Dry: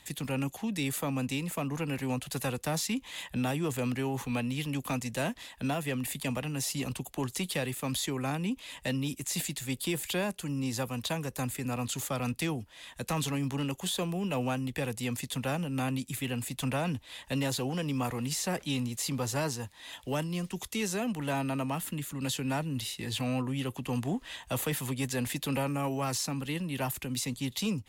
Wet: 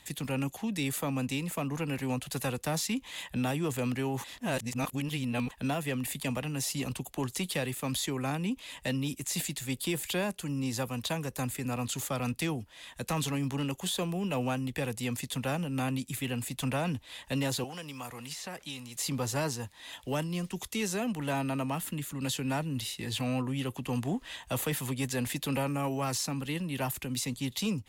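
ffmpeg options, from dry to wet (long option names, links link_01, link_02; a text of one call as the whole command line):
ffmpeg -i in.wav -filter_complex "[0:a]asettb=1/sr,asplit=3[link_01][link_02][link_03];[link_01]atrim=end=17.644[link_04];[link_02]atrim=start=17.64:end=18.96,asetpts=PTS-STARTPTS,afade=type=in:duration=0.004:curve=qsin,afade=type=out:start_time=1.316:duration=0.004:curve=qsin,acrossover=split=630|4500[link_05][link_06][link_07];[link_05]acompressor=threshold=-46dB:ratio=4[link_08];[link_06]acompressor=threshold=-42dB:ratio=4[link_09];[link_07]acompressor=threshold=-46dB:ratio=4[link_10];[link_08][link_09][link_10]amix=inputs=3:normalize=0[link_11];[link_03]atrim=start=18.956[link_12];[link_04][link_11]acrossfade=duration=0.004:curve1=hsin:curve2=qsin[link_13];[link_13][link_12]acrossfade=duration=0.004:curve1=qsin:curve2=hsin,asplit=3[link_14][link_15][link_16];[link_14]atrim=end=4.242[link_17];[link_15]atrim=start=4.238:end=5.512,asetpts=PTS-STARTPTS,areverse[link_18];[link_16]atrim=start=5.508[link_19];[link_17][link_18]acrossfade=duration=0.004:curve1=hsin:curve2=hsin[link_20];[link_20][link_19]acrossfade=duration=0.004:curve1=hsin:curve2=hsin" out.wav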